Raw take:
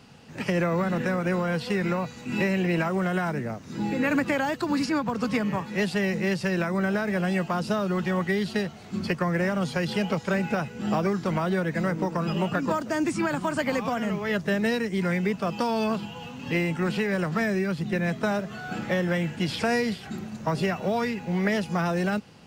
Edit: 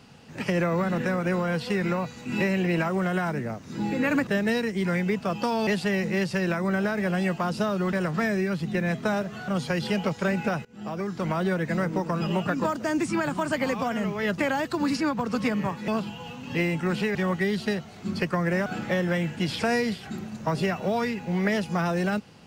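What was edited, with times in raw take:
4.27–5.77 swap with 14.44–15.84
8.03–9.54 swap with 17.11–18.66
10.71–11.46 fade in, from -23 dB

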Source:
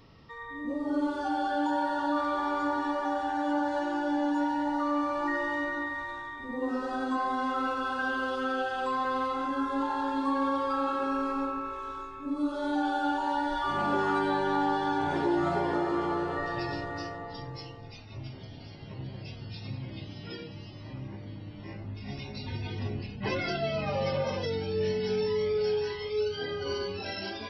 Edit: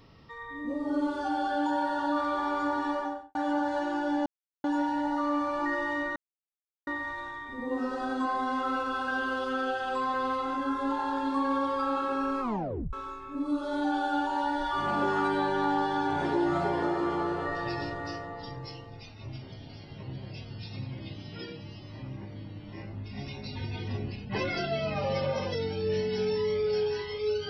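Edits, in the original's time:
2.94–3.35 studio fade out
4.26 insert silence 0.38 s
5.78 insert silence 0.71 s
11.32 tape stop 0.52 s

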